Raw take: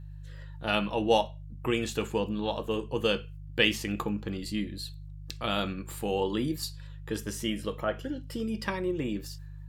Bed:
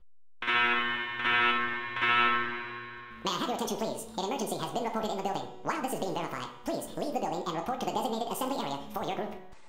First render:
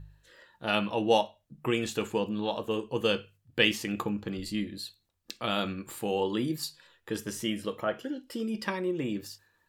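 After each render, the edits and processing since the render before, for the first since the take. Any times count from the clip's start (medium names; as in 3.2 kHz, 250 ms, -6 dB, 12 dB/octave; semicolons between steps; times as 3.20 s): de-hum 50 Hz, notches 3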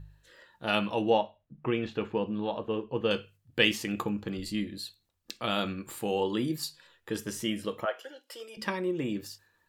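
1.10–3.11 s: distance through air 310 m; 7.85–8.57 s: high-pass 520 Hz 24 dB/octave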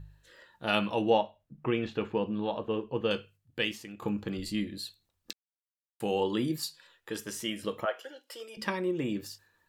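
2.87–4.02 s: fade out, to -15.5 dB; 5.33–6.00 s: mute; 6.60–7.63 s: bass shelf 310 Hz -8.5 dB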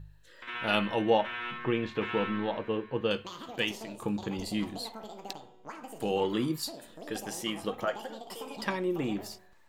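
add bed -12 dB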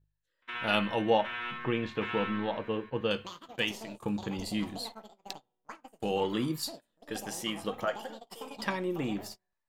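peaking EQ 370 Hz -3 dB 0.61 oct; gate -42 dBFS, range -26 dB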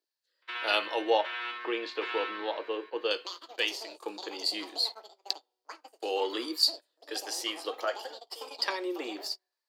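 steep high-pass 320 Hz 48 dB/octave; peaking EQ 4.6 kHz +15 dB 0.46 oct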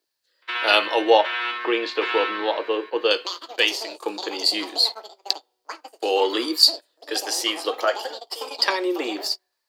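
trim +10 dB; peak limiter -1 dBFS, peak gain reduction 1 dB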